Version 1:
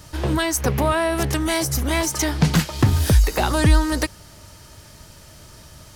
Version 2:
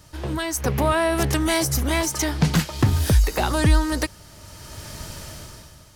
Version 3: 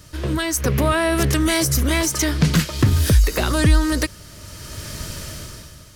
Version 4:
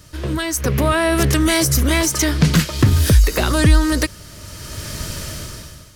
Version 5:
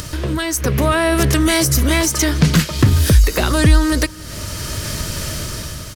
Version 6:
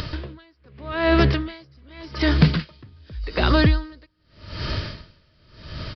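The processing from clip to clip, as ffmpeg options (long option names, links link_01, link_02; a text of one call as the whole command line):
ffmpeg -i in.wav -af "dynaudnorm=framelen=120:gausssize=11:maxgain=16dB,volume=-6.5dB" out.wav
ffmpeg -i in.wav -filter_complex "[0:a]equalizer=frequency=820:width=3.5:gain=-11.5,asplit=2[link_01][link_02];[link_02]alimiter=limit=-17dB:level=0:latency=1,volume=-2dB[link_03];[link_01][link_03]amix=inputs=2:normalize=0" out.wav
ffmpeg -i in.wav -af "dynaudnorm=framelen=570:gausssize=3:maxgain=4.5dB" out.wav
ffmpeg -i in.wav -af "acrusher=bits=10:mix=0:aa=0.000001,acompressor=mode=upward:threshold=-18dB:ratio=2.5,aecho=1:1:285:0.0794,volume=1dB" out.wav
ffmpeg -i in.wav -af "aresample=11025,aresample=44100,aeval=exprs='val(0)*pow(10,-35*(0.5-0.5*cos(2*PI*0.85*n/s))/20)':channel_layout=same" out.wav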